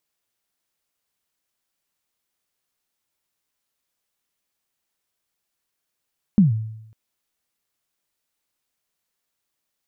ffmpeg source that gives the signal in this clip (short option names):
-f lavfi -i "aevalsrc='0.398*pow(10,-3*t/0.83)*sin(2*PI*(220*0.141/log(110/220)*(exp(log(110/220)*min(t,0.141)/0.141)-1)+110*max(t-0.141,0)))':d=0.55:s=44100"